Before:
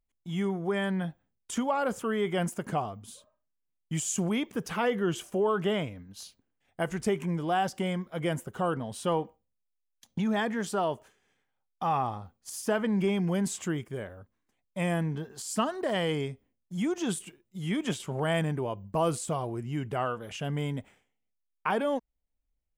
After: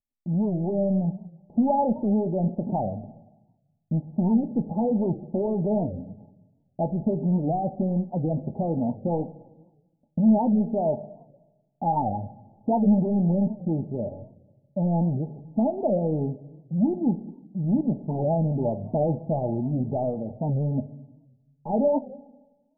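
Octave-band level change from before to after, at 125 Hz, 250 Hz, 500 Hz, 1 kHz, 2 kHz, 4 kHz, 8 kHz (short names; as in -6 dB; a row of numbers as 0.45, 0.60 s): +7.0 dB, +8.0 dB, +3.5 dB, +2.0 dB, under -40 dB, under -40 dB, under -40 dB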